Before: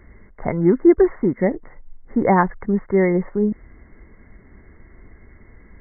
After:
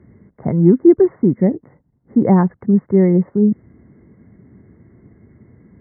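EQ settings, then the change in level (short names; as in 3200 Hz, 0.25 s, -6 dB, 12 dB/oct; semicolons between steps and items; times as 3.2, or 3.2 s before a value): HPF 120 Hz 24 dB/oct; tilt -4 dB/oct; low shelf 460 Hz +6 dB; -7.0 dB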